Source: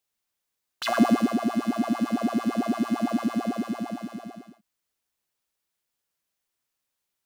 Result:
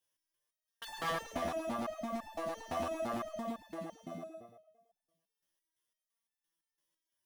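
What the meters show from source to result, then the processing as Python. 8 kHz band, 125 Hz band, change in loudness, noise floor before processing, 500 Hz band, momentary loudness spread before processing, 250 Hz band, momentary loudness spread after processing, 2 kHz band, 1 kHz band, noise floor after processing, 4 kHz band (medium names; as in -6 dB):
-8.5 dB, -13.5 dB, -13.5 dB, -83 dBFS, -6.5 dB, 13 LU, -19.5 dB, 11 LU, -9.0 dB, -9.0 dB, under -85 dBFS, -10.0 dB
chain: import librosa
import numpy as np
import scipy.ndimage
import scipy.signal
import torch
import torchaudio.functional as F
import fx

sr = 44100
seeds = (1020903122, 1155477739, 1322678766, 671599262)

p1 = fx.ripple_eq(x, sr, per_octave=1.2, db=9)
p2 = 10.0 ** (-24.5 / 20.0) * (np.abs((p1 / 10.0 ** (-24.5 / 20.0) + 3.0) % 4.0 - 2.0) - 1.0)
p3 = fx.dereverb_blind(p2, sr, rt60_s=0.86)
p4 = p3 + fx.echo_feedback(p3, sr, ms=110, feedback_pct=59, wet_db=-5.5, dry=0)
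p5 = fx.resonator_held(p4, sr, hz=5.9, low_hz=84.0, high_hz=880.0)
y = p5 * 10.0 ** (5.5 / 20.0)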